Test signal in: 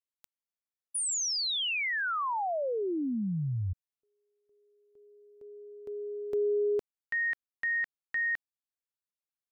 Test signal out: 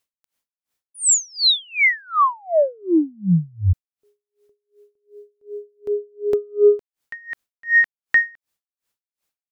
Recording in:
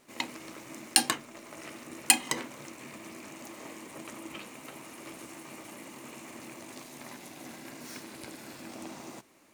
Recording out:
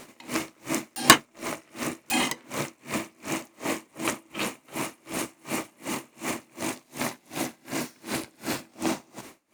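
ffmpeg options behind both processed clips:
ffmpeg -i in.wav -af "aeval=exprs='0.75*(cos(1*acos(clip(val(0)/0.75,-1,1)))-cos(1*PI/2))+0.168*(cos(5*acos(clip(val(0)/0.75,-1,1)))-cos(5*PI/2))+0.119*(cos(7*acos(clip(val(0)/0.75,-1,1)))-cos(7*PI/2))':channel_layout=same,aeval=exprs='0.631*sin(PI/2*3.98*val(0)/0.631)':channel_layout=same,aeval=exprs='val(0)*pow(10,-34*(0.5-0.5*cos(2*PI*2.7*n/s))/20)':channel_layout=same,volume=2.5dB" out.wav

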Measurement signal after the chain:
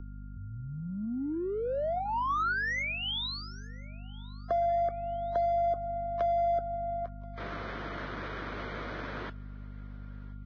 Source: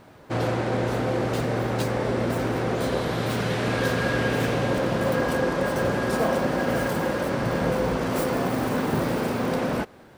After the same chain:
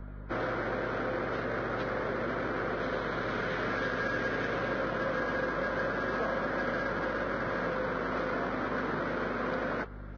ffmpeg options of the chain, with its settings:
ffmpeg -i in.wav -filter_complex "[0:a]highpass=150,equalizer=frequency=820:width_type=q:width=4:gain=-8,equalizer=frequency=1400:width_type=q:width=4:gain=5,equalizer=frequency=2700:width_type=q:width=4:gain=-9,lowpass=frequency=3500:width=0.5412,lowpass=frequency=3500:width=1.3066,adynamicsmooth=sensitivity=3.5:basefreq=2500,aeval=exprs='val(0)+0.0158*(sin(2*PI*50*n/s)+sin(2*PI*2*50*n/s)/2+sin(2*PI*3*50*n/s)/3+sin(2*PI*4*50*n/s)/4+sin(2*PI*5*50*n/s)/5)':channel_layout=same,acrossover=split=300|730[link_01][link_02][link_03];[link_01]acompressor=threshold=-39dB:ratio=4[link_04];[link_02]acompressor=threshold=-35dB:ratio=4[link_05];[link_03]acompressor=threshold=-30dB:ratio=4[link_06];[link_04][link_05][link_06]amix=inputs=3:normalize=0,aecho=1:1:1029|2058:0.0708|0.0241,aeval=exprs='val(0)+0.000891*sin(2*PI*1400*n/s)':channel_layout=same,volume=-2dB" -ar 16000 -c:a libvorbis -b:a 16k out.ogg

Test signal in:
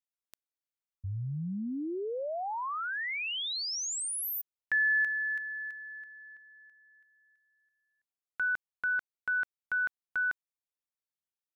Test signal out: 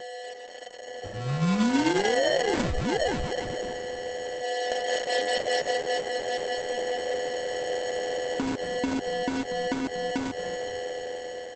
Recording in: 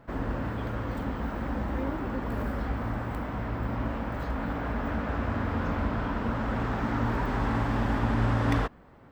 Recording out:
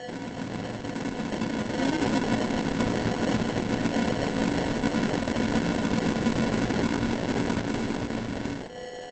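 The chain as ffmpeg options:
ffmpeg -i in.wav -filter_complex "[0:a]aeval=exprs='val(0)+0.00794*sin(2*PI*500*n/s)':channel_layout=same,acompressor=threshold=-36dB:ratio=10:attack=26:release=228:knee=1:detection=peak,alimiter=level_in=5.5dB:limit=-24dB:level=0:latency=1:release=283,volume=-5.5dB,dynaudnorm=framelen=440:gausssize=7:maxgain=8.5dB,lowpass=2400,asplit=4[link_01][link_02][link_03][link_04];[link_02]adelay=238,afreqshift=-86,volume=-15dB[link_05];[link_03]adelay=476,afreqshift=-172,volume=-23.9dB[link_06];[link_04]adelay=714,afreqshift=-258,volume=-32.7dB[link_07];[link_01][link_05][link_06][link_07]amix=inputs=4:normalize=0,anlmdn=0.00251,highpass=frequency=150:width=0.5412,highpass=frequency=150:width=1.3066,lowshelf=frequency=330:gain=10,bandreject=frequency=50:width_type=h:width=6,bandreject=frequency=100:width_type=h:width=6,bandreject=frequency=150:width_type=h:width=6,bandreject=frequency=200:width_type=h:width=6,bandreject=frequency=250:width_type=h:width=6,bandreject=frequency=300:width_type=h:width=6,bandreject=frequency=350:width_type=h:width=6,bandreject=frequency=400:width_type=h:width=6,acrusher=samples=36:mix=1:aa=0.000001,volume=4dB" -ar 48000 -c:a libopus -b:a 10k out.opus

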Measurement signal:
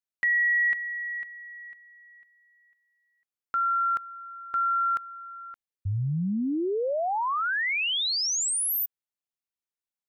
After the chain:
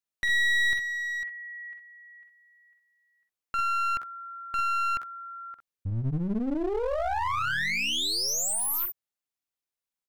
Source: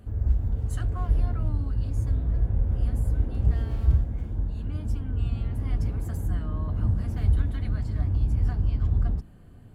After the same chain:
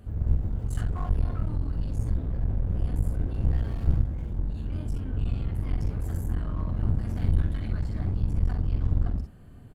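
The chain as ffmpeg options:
ffmpeg -i in.wav -af "aecho=1:1:46|61:0.398|0.355,aeval=exprs='clip(val(0),-1,0.0266)':channel_layout=same" out.wav

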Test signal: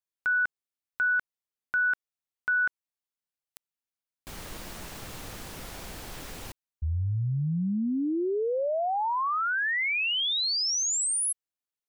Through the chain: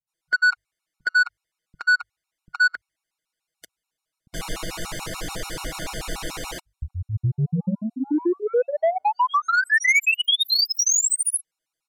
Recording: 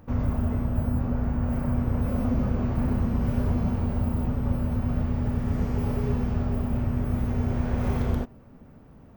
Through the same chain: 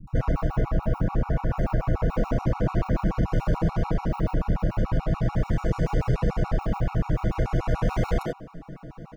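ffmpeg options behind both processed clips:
ffmpeg -i in.wav -filter_complex "[0:a]lowpass=11000,bandreject=frequency=50:width_type=h:width=6,bandreject=frequency=100:width_type=h:width=6,bandreject=frequency=150:width_type=h:width=6,aecho=1:1:6.2:0.88,adynamicequalizer=threshold=0.0112:dfrequency=2000:dqfactor=1.7:tfrequency=2000:tqfactor=1.7:attack=5:release=100:ratio=0.375:range=3.5:mode=boostabove:tftype=bell,asplit=2[link_01][link_02];[link_02]acompressor=threshold=-30dB:ratio=6:attack=10:release=127:knee=6:detection=peak,volume=3dB[link_03];[link_01][link_03]amix=inputs=2:normalize=0,asoftclip=type=tanh:threshold=-17dB,acrossover=split=200[link_04][link_05];[link_05]adelay=70[link_06];[link_04][link_06]amix=inputs=2:normalize=0,afftfilt=real='re*gt(sin(2*PI*6.9*pts/sr)*(1-2*mod(floor(b*sr/1024/730),2)),0)':imag='im*gt(sin(2*PI*6.9*pts/sr)*(1-2*mod(floor(b*sr/1024/730),2)),0)':win_size=1024:overlap=0.75,volume=4dB" out.wav

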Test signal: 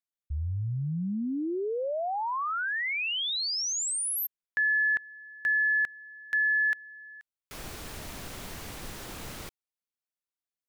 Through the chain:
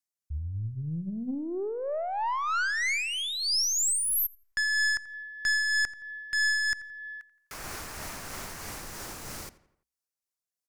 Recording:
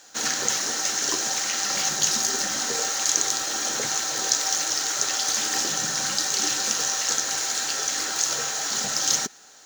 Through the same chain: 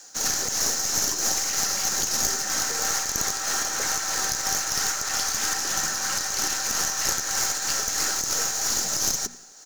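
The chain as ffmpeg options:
ffmpeg -i in.wav -filter_complex "[0:a]aemphasis=mode=reproduction:type=50kf,bandreject=frequency=60:width_type=h:width=6,bandreject=frequency=120:width_type=h:width=6,bandreject=frequency=180:width_type=h:width=6,bandreject=frequency=240:width_type=h:width=6,acrossover=split=850|2500[link_01][link_02][link_03];[link_02]dynaudnorm=framelen=360:gausssize=13:maxgain=10dB[link_04];[link_01][link_04][link_03]amix=inputs=3:normalize=0,alimiter=limit=-19dB:level=0:latency=1:release=125,asoftclip=type=tanh:threshold=-22.5dB,aexciter=amount=2.4:drive=9.4:freq=4800,tremolo=f=3.1:d=0.3,aeval=exprs='0.631*(cos(1*acos(clip(val(0)/0.631,-1,1)))-cos(1*PI/2))+0.2*(cos(4*acos(clip(val(0)/0.631,-1,1)))-cos(4*PI/2))':channel_layout=same,asplit=2[link_05][link_06];[link_06]adelay=85,lowpass=frequency=3500:poles=1,volume=-17dB,asplit=2[link_07][link_08];[link_08]adelay=85,lowpass=frequency=3500:poles=1,volume=0.49,asplit=2[link_09][link_10];[link_10]adelay=85,lowpass=frequency=3500:poles=1,volume=0.49,asplit=2[link_11][link_12];[link_12]adelay=85,lowpass=frequency=3500:poles=1,volume=0.49[link_13];[link_07][link_09][link_11][link_13]amix=inputs=4:normalize=0[link_14];[link_05][link_14]amix=inputs=2:normalize=0" out.wav

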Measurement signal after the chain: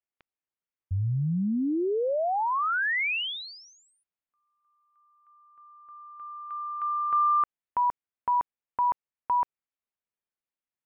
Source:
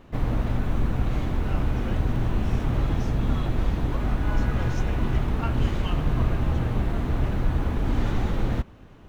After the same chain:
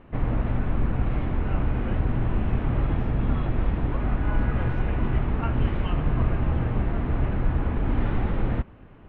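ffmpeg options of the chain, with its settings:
ffmpeg -i in.wav -af "lowpass=frequency=2800:width=0.5412,lowpass=frequency=2800:width=1.3066" out.wav

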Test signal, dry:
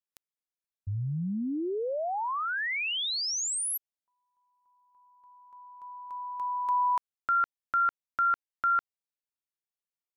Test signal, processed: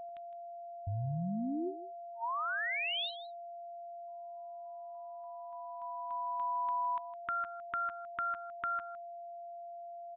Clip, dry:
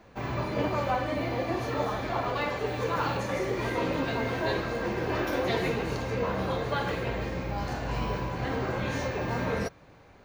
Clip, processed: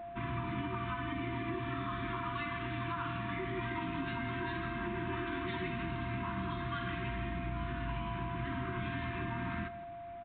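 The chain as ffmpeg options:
ffmpeg -i in.wav -af "afftfilt=real='re*(1-between(b*sr/4096,380,910))':imag='im*(1-between(b*sr/4096,380,910))':win_size=4096:overlap=0.75,acompressor=threshold=-33dB:ratio=16:attack=7.2:release=170:knee=6:detection=rms,aeval=exprs='val(0)+0.00794*sin(2*PI*690*n/s)':channel_layout=same,aecho=1:1:160:0.188,aresample=8000,aresample=44100" out.wav

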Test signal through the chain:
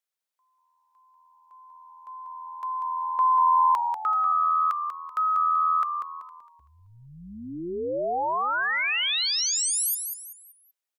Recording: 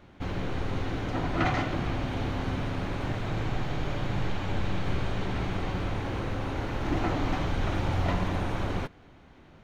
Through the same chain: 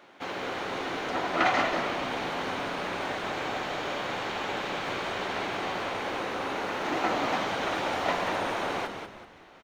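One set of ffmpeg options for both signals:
ffmpeg -i in.wav -filter_complex "[0:a]highpass=470,asplit=5[link_01][link_02][link_03][link_04][link_05];[link_02]adelay=191,afreqshift=-82,volume=-6.5dB[link_06];[link_03]adelay=382,afreqshift=-164,volume=-15.6dB[link_07];[link_04]adelay=573,afreqshift=-246,volume=-24.7dB[link_08];[link_05]adelay=764,afreqshift=-328,volume=-33.9dB[link_09];[link_01][link_06][link_07][link_08][link_09]amix=inputs=5:normalize=0,volume=5dB" out.wav

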